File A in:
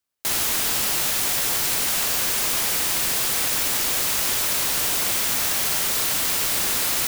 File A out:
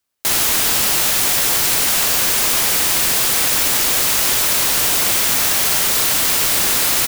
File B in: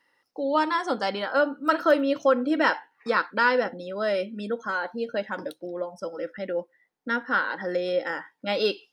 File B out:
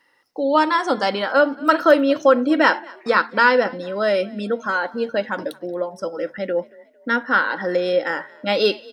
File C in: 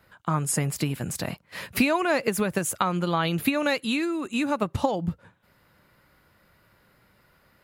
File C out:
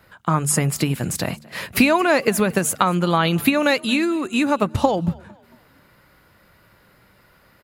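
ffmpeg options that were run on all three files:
ffmpeg -i in.wav -filter_complex "[0:a]bandreject=frequency=74.55:width_type=h:width=4,bandreject=frequency=149.1:width_type=h:width=4,bandreject=frequency=223.65:width_type=h:width=4,asplit=4[link_01][link_02][link_03][link_04];[link_02]adelay=226,afreqshift=33,volume=-24dB[link_05];[link_03]adelay=452,afreqshift=66,volume=-32dB[link_06];[link_04]adelay=678,afreqshift=99,volume=-39.9dB[link_07];[link_01][link_05][link_06][link_07]amix=inputs=4:normalize=0,volume=6.5dB" out.wav

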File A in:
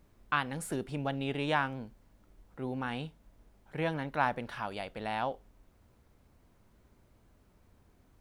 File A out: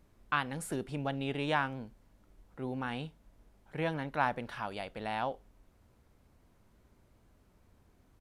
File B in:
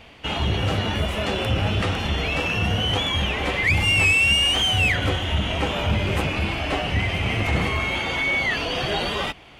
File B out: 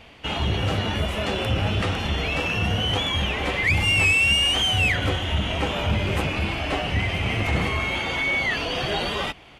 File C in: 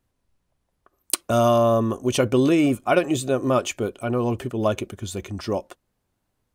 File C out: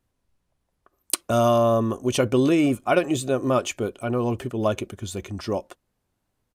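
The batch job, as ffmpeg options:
ffmpeg -i in.wav -af "aresample=32000,aresample=44100,volume=-1dB" out.wav

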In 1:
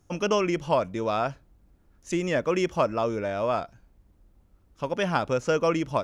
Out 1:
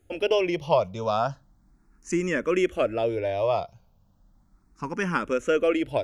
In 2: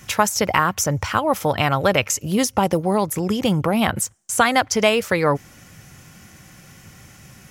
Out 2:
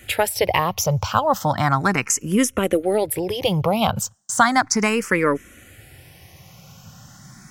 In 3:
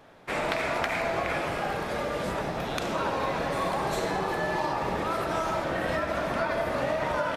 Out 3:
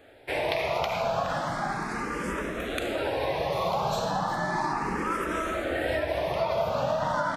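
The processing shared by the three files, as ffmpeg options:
ffmpeg -i in.wav -filter_complex "[0:a]aeval=exprs='0.841*(cos(1*acos(clip(val(0)/0.841,-1,1)))-cos(1*PI/2))+0.00841*(cos(6*acos(clip(val(0)/0.841,-1,1)))-cos(6*PI/2))':channel_layout=same,asplit=2[link_01][link_02];[link_02]afreqshift=0.35[link_03];[link_01][link_03]amix=inputs=2:normalize=1,volume=3dB" out.wav

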